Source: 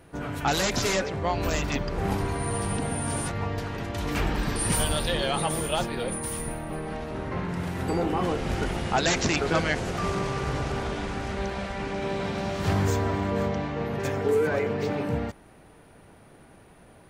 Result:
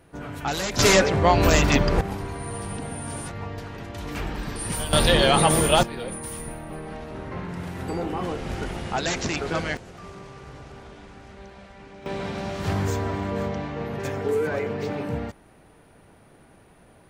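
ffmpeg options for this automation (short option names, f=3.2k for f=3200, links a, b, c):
-af "asetnsamples=n=441:p=0,asendcmd='0.79 volume volume 9dB;2.01 volume volume -4dB;4.93 volume volume 8.5dB;5.83 volume volume -2.5dB;9.77 volume volume -13.5dB;12.06 volume volume -1dB',volume=-2.5dB"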